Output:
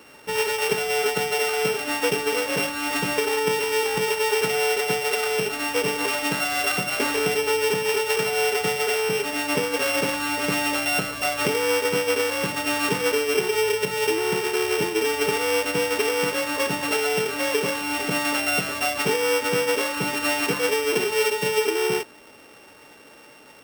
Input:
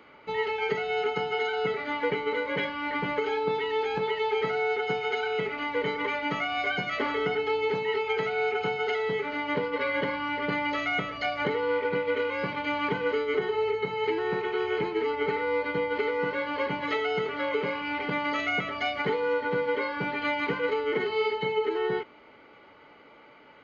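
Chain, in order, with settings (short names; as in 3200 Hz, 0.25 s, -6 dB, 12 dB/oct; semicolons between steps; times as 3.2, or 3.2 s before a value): sample sorter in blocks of 16 samples; gain +5 dB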